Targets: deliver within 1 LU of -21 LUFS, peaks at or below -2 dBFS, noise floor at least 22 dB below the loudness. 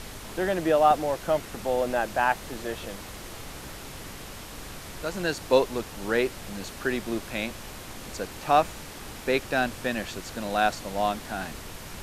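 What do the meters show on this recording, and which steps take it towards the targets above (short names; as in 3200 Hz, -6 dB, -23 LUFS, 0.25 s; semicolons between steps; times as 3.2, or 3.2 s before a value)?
noise floor -41 dBFS; noise floor target -50 dBFS; loudness -27.5 LUFS; peak -6.5 dBFS; loudness target -21.0 LUFS
-> noise print and reduce 9 dB; gain +6.5 dB; limiter -2 dBFS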